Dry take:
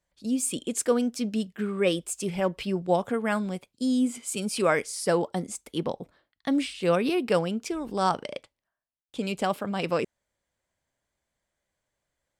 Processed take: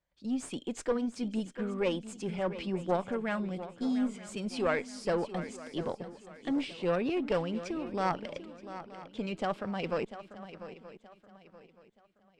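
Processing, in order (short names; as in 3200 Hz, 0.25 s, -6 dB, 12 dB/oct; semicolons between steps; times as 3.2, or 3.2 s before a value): one diode to ground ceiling -22.5 dBFS; air absorption 110 m; swung echo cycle 0.925 s, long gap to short 3:1, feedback 31%, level -13 dB; gain -3.5 dB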